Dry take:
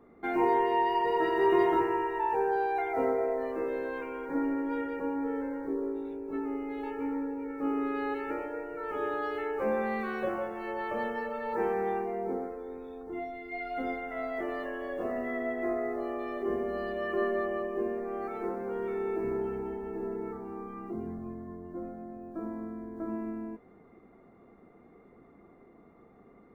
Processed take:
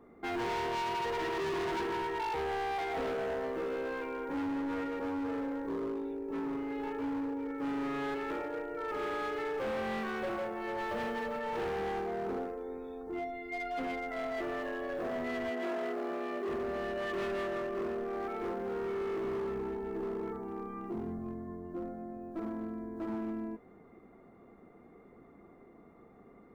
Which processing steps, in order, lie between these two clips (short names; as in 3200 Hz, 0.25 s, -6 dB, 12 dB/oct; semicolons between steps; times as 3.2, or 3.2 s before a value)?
10.78–11.39 tone controls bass +4 dB, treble +5 dB; hard clip -32.5 dBFS, distortion -7 dB; 15.5–16.48 brick-wall FIR high-pass 160 Hz